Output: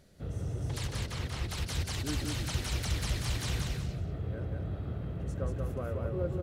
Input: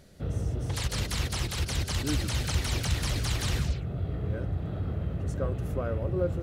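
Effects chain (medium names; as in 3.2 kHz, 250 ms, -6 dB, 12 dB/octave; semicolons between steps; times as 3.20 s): 0.90–1.49 s: treble shelf 4.4 kHz -10.5 dB; feedback delay 185 ms, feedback 22%, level -3 dB; trim -6 dB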